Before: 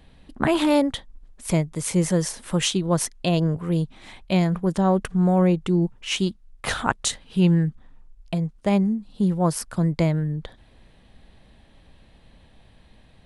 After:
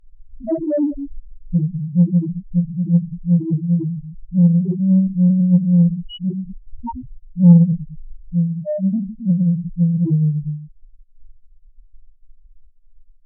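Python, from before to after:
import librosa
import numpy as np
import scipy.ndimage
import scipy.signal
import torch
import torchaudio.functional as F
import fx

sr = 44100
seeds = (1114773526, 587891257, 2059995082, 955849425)

y = fx.room_shoebox(x, sr, seeds[0], volume_m3=330.0, walls='furnished', distance_m=6.9)
y = fx.spec_topn(y, sr, count=1)
y = fx.cheby_harmonics(y, sr, harmonics=(7,), levels_db=(-29,), full_scale_db=4.0)
y = F.gain(torch.from_numpy(y), -1.5).numpy()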